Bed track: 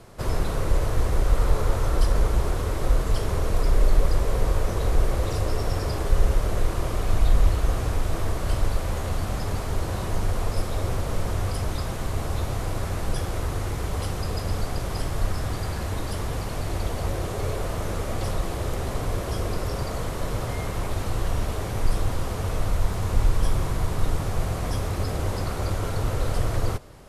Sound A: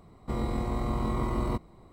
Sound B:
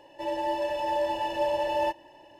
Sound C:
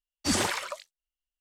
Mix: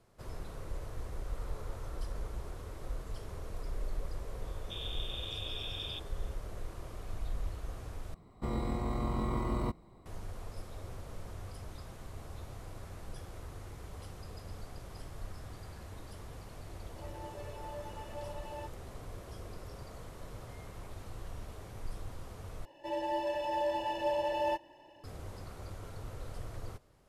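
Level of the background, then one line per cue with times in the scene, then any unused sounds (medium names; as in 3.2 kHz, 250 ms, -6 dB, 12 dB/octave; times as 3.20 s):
bed track -18.5 dB
4.42 s: add A -15 dB + frequency inversion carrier 3.6 kHz
8.14 s: replace with A -4 dB
16.76 s: add B -16.5 dB + expander on every frequency bin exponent 1.5
22.65 s: replace with B -5.5 dB + bass shelf 220 Hz +3.5 dB
not used: C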